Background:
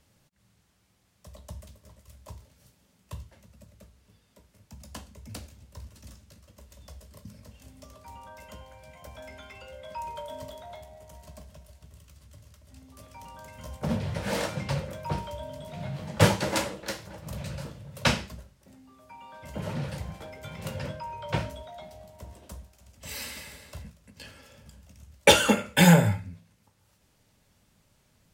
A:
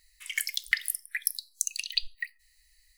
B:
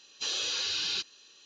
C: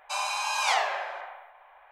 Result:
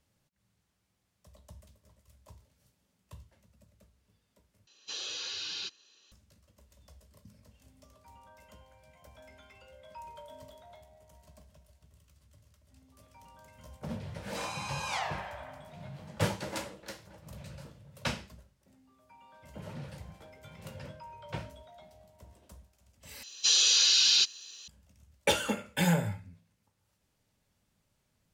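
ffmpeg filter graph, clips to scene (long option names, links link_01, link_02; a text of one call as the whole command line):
ffmpeg -i bed.wav -i cue0.wav -i cue1.wav -i cue2.wav -filter_complex "[2:a]asplit=2[link_01][link_02];[0:a]volume=-10dB[link_03];[link_02]crystalizer=i=7:c=0[link_04];[link_03]asplit=3[link_05][link_06][link_07];[link_05]atrim=end=4.674[link_08];[link_01]atrim=end=1.45,asetpts=PTS-STARTPTS,volume=-6.5dB[link_09];[link_06]atrim=start=6.116:end=23.234[link_10];[link_04]atrim=end=1.45,asetpts=PTS-STARTPTS,volume=-4.5dB[link_11];[link_07]atrim=start=24.676[link_12];[3:a]atrim=end=1.91,asetpts=PTS-STARTPTS,volume=-9.5dB,afade=type=in:duration=0.004:curve=hsin,afade=type=out:start_time=1.906:duration=0.004:curve=hsin,adelay=14250[link_13];[link_08][link_09]acrossfade=duration=0.004:curve1=hsin:curve2=hsin[link_14];[link_14][link_10]acrossfade=duration=0.004:curve1=hsin:curve2=hsin[link_15];[link_15][link_11]acrossfade=duration=0.004:curve1=hsin:curve2=hsin[link_16];[link_16][link_12]acrossfade=duration=0.004:curve1=hsin:curve2=hsin[link_17];[link_17][link_13]amix=inputs=2:normalize=0" out.wav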